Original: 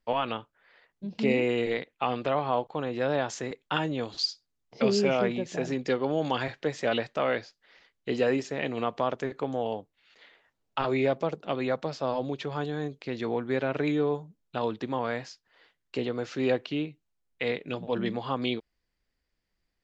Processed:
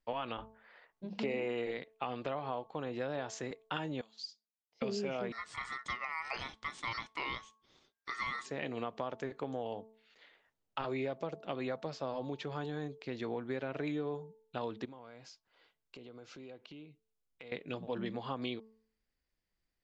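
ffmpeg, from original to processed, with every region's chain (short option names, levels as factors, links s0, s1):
-filter_complex "[0:a]asettb=1/sr,asplit=3[s0][s1][s2];[s0]atrim=end=0.384[s3];[s1]atrim=start=0.38:end=1.71,asetpts=PTS-STARTPTS,afade=t=in:d=0.004:c=qsin,afade=t=out:st=1.326:d=0.004:c=qsin,equalizer=f=950:w=0.45:g=8.5,aeval=exprs='val(0)+0.00891*(sin(2*PI*50*n/s)+sin(2*PI*2*50*n/s)/2+sin(2*PI*3*50*n/s)/3+sin(2*PI*4*50*n/s)/4+sin(2*PI*5*50*n/s)/5)':c=same,bandreject=f=50:t=h:w=6,bandreject=f=100:t=h:w=6,bandreject=f=150:t=h:w=6,bandreject=f=200:t=h:w=6,bandreject=f=250:t=h:w=6,bandreject=f=300:t=h:w=6[s4];[s2]atrim=start=1.706[s5];[s3][s4]acrossfade=d=0.004:c1=hsin:c2=qsin[s6];[s6][s5]acrossfade=d=0.004:c1=qsin:c2=hsin,asettb=1/sr,asplit=3[s7][s8][s9];[s7]atrim=end=4.014[s10];[s8]atrim=start=4.01:end=4.82,asetpts=PTS-STARTPTS,afade=t=in:d=0.004:c=qsin,afade=t=out:st=0.806:d=0.004:c=qsin,lowpass=f=2500:p=1,aderivative[s11];[s9]atrim=start=4.816[s12];[s10][s11]acrossfade=d=0.004:c1=hsin:c2=qsin[s13];[s13][s12]acrossfade=d=0.004:c1=qsin:c2=hsin,asettb=1/sr,asplit=3[s14][s15][s16];[s14]atrim=end=5.324[s17];[s15]atrim=start=5.32:end=8.46,asetpts=PTS-STARTPTS,afade=t=in:d=0.004:c=qsin,afade=t=out:st=3.136:d=0.004:c=qsin,lowshelf=f=200:g=-9.5,aeval=exprs='val(0)*sin(2*PI*1600*n/s)':c=same[s18];[s16]atrim=start=8.456[s19];[s17][s18]acrossfade=d=0.004:c1=hsin:c2=qsin[s20];[s20][s19]acrossfade=d=0.004:c1=qsin:c2=hsin,asettb=1/sr,asplit=3[s21][s22][s23];[s21]atrim=end=14.854[s24];[s22]atrim=start=14.85:end=17.52,asetpts=PTS-STARTPTS,afade=t=in:d=0.004:c=qsin,afade=t=out:st=2.666:d=0.004:c=qsin,bandreject=f=1800:w=6.8,acompressor=threshold=0.00708:ratio=5:attack=3.2:release=140:knee=1:detection=peak[s25];[s23]atrim=start=17.516[s26];[s24][s25]acrossfade=d=0.004:c1=hsin:c2=qsin[s27];[s27][s26]acrossfade=d=0.004:c1=qsin:c2=hsin,bandreject=f=220.7:t=h:w=4,bandreject=f=441.4:t=h:w=4,bandreject=f=662.1:t=h:w=4,bandreject=f=882.8:t=h:w=4,bandreject=f=1103.5:t=h:w=4,acompressor=threshold=0.0447:ratio=6,volume=0.501"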